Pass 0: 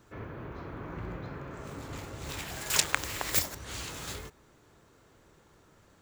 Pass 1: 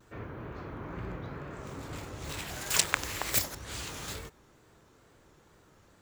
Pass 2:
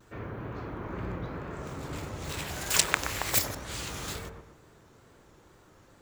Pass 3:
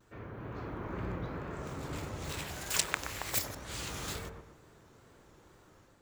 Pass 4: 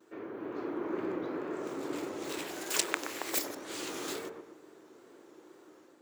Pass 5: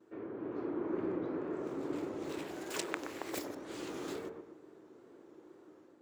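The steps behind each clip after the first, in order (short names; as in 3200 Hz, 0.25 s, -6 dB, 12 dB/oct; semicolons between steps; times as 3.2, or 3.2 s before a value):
vibrato 2.2 Hz 92 cents
dark delay 0.123 s, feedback 36%, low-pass 1300 Hz, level -4 dB; gain +2 dB
AGC gain up to 5 dB; gain -7 dB
resonant high-pass 330 Hz, resonance Q 3.4
tilt -2.5 dB/oct; gain -4.5 dB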